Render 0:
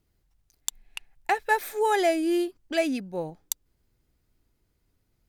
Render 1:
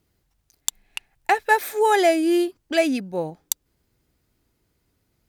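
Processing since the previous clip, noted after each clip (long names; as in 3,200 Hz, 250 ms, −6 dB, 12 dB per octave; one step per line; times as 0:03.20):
high-pass filter 87 Hz 6 dB per octave
level +5.5 dB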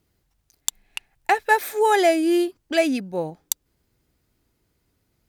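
no processing that can be heard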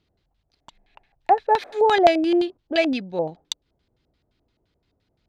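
auto-filter low-pass square 5.8 Hz 690–3,800 Hz
level −1.5 dB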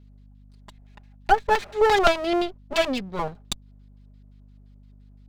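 lower of the sound and its delayed copy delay 4.9 ms
mains hum 50 Hz, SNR 24 dB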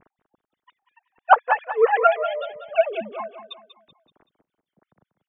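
three sine waves on the formant tracks
on a send: repeating echo 190 ms, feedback 42%, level −11.5 dB
on the sum: level +1 dB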